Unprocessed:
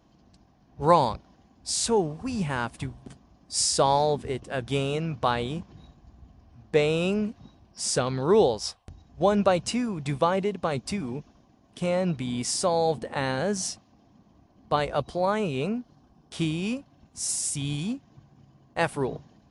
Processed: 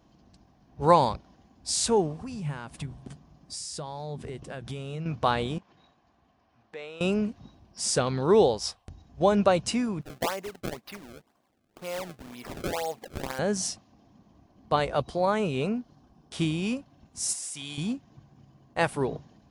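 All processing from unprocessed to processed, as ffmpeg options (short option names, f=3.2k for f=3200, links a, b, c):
-filter_complex "[0:a]asettb=1/sr,asplit=3[a][b][c];[a]atrim=end=2.224[d];[b]atrim=start=2.22:end=5.06,asetpts=PTS-STARTPTS,afade=t=in:d=0.004:c=qsin,afade=t=out:st=2.836:d=0.004:c=qsin,acompressor=threshold=-34dB:ratio=10:attack=3.2:release=140:knee=1:detection=peak,equalizer=f=150:w=7.2:g=11.5[e];[c]atrim=start=5.056[f];[d][e]acrossfade=d=0.004:c1=hsin:c2=qsin[g];[g][f]acrossfade=d=0.004:c1=qsin:c2=hsin,asettb=1/sr,asplit=3[h][i][j];[h]atrim=end=5.584[k];[i]atrim=start=5.58:end=7.01,asetpts=PTS-STARTPTS,afade=t=in:d=0.004:c=qsin,afade=t=out:st=1.426:d=0.004:c=qsin,acompressor=threshold=-42dB:ratio=2:attack=3.2:release=140:knee=1:detection=peak,bandpass=f=1.6k:t=q:w=0.54[l];[j]atrim=start=7.006[m];[k][l]acrossfade=d=0.004:c1=hsin:c2=qsin[n];[n][m]acrossfade=d=0.004:c1=qsin:c2=hsin,asettb=1/sr,asplit=3[o][p][q];[o]atrim=end=10.014[r];[p]atrim=start=10.01:end=13.39,asetpts=PTS-STARTPTS,afade=t=in:d=0.004:c=qsin,afade=t=out:st=3.376:d=0.004:c=qsin,highpass=f=1.3k:p=1,adynamicsmooth=sensitivity=2:basefreq=2.7k,acrusher=samples=27:mix=1:aa=0.000001:lfo=1:lforange=43.2:lforate=2[s];[q]atrim=start=13.386[t];[r][s]acrossfade=d=0.004:c1=hsin:c2=qsin[u];[u][t]acrossfade=d=0.004:c1=qsin:c2=hsin,asettb=1/sr,asplit=3[v][w][x];[v]atrim=end=17.334[y];[w]atrim=start=17.33:end=17.78,asetpts=PTS-STARTPTS,afade=t=in:d=0.004:c=qsin,afade=t=out:st=0.446:d=0.004:c=qsin,highpass=f=920:p=1,acrossover=split=2600[z][aa];[aa]acompressor=threshold=-33dB:ratio=4:attack=1:release=60[ab];[z][ab]amix=inputs=2:normalize=0[ac];[x]atrim=start=17.776[ad];[y][ac]acrossfade=d=0.004:c1=hsin:c2=qsin[ae];[ae][ad]acrossfade=d=0.004:c1=qsin:c2=hsin"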